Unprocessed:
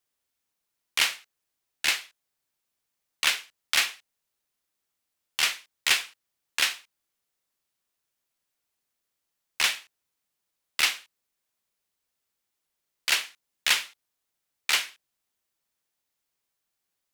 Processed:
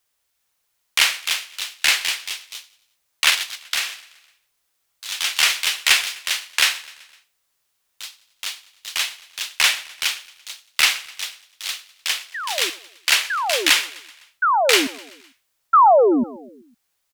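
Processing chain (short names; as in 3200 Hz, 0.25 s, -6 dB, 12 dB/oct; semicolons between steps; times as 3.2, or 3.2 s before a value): in parallel at +1 dB: limiter -15.5 dBFS, peak gain reduction 7 dB; 3.3–3.92 on the sum: compressor 2.5:1, threshold -27 dBFS, peak gain reduction 9.5 dB; 15.73–16.24 painted sound fall 220–1400 Hz -13 dBFS; on a send: feedback echo 0.127 s, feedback 55%, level -20 dB; on the sum: echoes that change speed 0.406 s, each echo +2 st, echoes 3, each echo -6 dB; bell 240 Hz -8 dB 1.7 oct; gain +3 dB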